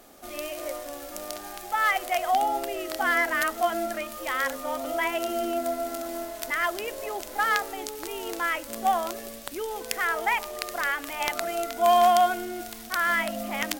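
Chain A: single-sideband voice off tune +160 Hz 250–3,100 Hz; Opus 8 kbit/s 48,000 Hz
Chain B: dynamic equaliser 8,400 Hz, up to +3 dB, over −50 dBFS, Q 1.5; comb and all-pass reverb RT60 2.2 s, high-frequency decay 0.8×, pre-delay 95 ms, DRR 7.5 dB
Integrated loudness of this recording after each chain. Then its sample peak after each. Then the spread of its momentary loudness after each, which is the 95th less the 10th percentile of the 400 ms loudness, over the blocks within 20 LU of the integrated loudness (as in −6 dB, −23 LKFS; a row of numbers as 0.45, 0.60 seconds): −28.0, −26.5 LKFS; −9.0, −5.5 dBFS; 14, 11 LU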